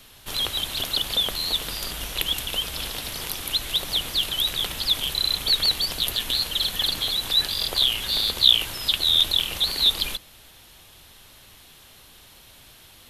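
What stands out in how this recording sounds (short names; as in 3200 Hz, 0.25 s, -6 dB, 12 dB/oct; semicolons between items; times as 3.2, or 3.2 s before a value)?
noise floor -50 dBFS; spectral tilt -1.5 dB/oct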